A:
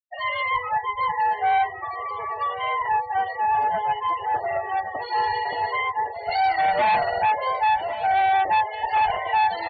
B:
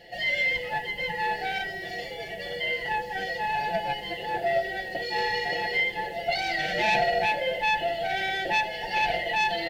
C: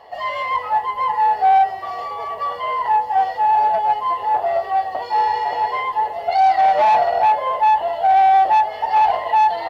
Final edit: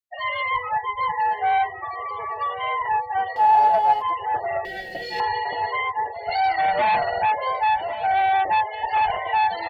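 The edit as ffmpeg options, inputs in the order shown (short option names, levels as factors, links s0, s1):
-filter_complex "[0:a]asplit=3[s0][s1][s2];[s0]atrim=end=3.362[s3];[2:a]atrim=start=3.358:end=4.022[s4];[s1]atrim=start=4.018:end=4.652[s5];[1:a]atrim=start=4.648:end=5.202[s6];[s2]atrim=start=5.198[s7];[s3][s4]acrossfade=d=0.004:c1=hsin:c2=hsin[s8];[s8][s5]acrossfade=d=0.004:c1=hsin:c2=hsin[s9];[s9][s6]acrossfade=d=0.004:c1=hsin:c2=hsin[s10];[s10][s7]acrossfade=d=0.004:c1=hsin:c2=hsin"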